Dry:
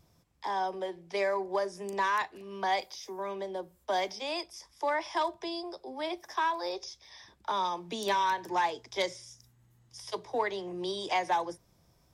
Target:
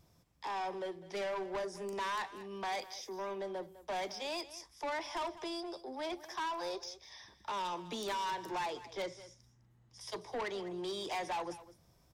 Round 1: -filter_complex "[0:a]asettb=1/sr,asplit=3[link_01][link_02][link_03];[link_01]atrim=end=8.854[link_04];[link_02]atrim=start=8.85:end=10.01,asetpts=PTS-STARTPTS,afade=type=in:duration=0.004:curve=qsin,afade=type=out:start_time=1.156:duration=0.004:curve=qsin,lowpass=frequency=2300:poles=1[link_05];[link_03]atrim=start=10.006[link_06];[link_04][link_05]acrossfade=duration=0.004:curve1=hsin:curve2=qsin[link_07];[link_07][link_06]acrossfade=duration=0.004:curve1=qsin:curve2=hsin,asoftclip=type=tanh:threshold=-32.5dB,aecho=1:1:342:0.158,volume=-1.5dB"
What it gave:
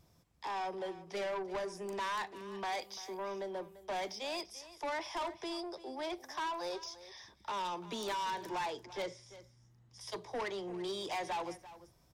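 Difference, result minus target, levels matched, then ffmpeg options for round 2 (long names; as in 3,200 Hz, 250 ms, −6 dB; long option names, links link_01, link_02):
echo 138 ms late
-filter_complex "[0:a]asettb=1/sr,asplit=3[link_01][link_02][link_03];[link_01]atrim=end=8.854[link_04];[link_02]atrim=start=8.85:end=10.01,asetpts=PTS-STARTPTS,afade=type=in:duration=0.004:curve=qsin,afade=type=out:start_time=1.156:duration=0.004:curve=qsin,lowpass=frequency=2300:poles=1[link_05];[link_03]atrim=start=10.006[link_06];[link_04][link_05]acrossfade=duration=0.004:curve1=hsin:curve2=qsin[link_07];[link_07][link_06]acrossfade=duration=0.004:curve1=qsin:curve2=hsin,asoftclip=type=tanh:threshold=-32.5dB,aecho=1:1:204:0.158,volume=-1.5dB"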